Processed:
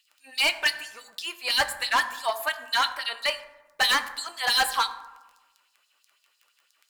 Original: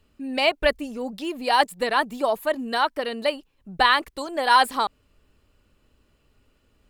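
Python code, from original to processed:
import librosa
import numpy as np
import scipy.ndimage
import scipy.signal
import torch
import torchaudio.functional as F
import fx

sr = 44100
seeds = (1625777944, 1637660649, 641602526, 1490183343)

y = fx.tilt_shelf(x, sr, db=-4.5, hz=1200.0)
y = fx.dmg_crackle(y, sr, seeds[0], per_s=11.0, level_db=-40.0)
y = fx.filter_lfo_highpass(y, sr, shape='sine', hz=6.0, low_hz=820.0, high_hz=5100.0, q=1.6)
y = np.clip(y, -10.0 ** (-18.0 / 20.0), 10.0 ** (-18.0 / 20.0))
y = fx.rev_fdn(y, sr, rt60_s=1.1, lf_ratio=1.05, hf_ratio=0.45, size_ms=59.0, drr_db=8.0)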